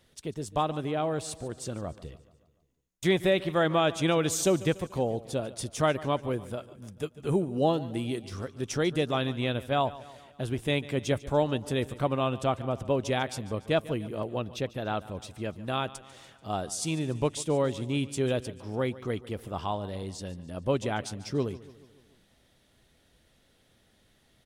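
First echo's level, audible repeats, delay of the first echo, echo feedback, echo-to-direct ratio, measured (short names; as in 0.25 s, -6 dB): -18.0 dB, 4, 0.145 s, 54%, -16.5 dB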